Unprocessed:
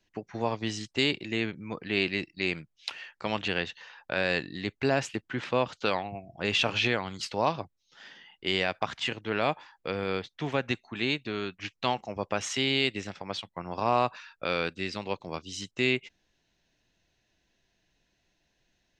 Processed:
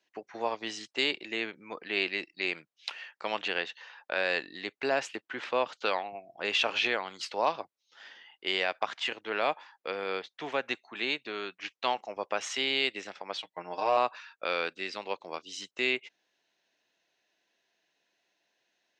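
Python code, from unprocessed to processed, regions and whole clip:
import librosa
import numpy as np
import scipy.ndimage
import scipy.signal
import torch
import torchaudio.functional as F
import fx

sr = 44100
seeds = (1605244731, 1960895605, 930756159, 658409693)

y = fx.chain(x, sr, fx.peak_eq(hz=1200.0, db=-8.0, octaves=0.41),
    fx.comb(ms=6.5, depth=0.67), at=(13.39, 13.97))
y = scipy.signal.sosfilt(scipy.signal.butter(2, 440.0, 'highpass', fs=sr, output='sos'), y)
y = fx.high_shelf(y, sr, hz=7300.0, db=-8.0)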